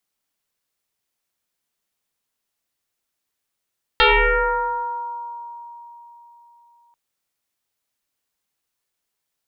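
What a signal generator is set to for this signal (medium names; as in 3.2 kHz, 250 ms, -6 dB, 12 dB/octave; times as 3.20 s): FM tone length 2.94 s, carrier 944 Hz, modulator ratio 0.48, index 6.2, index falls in 2.12 s exponential, decay 3.91 s, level -10 dB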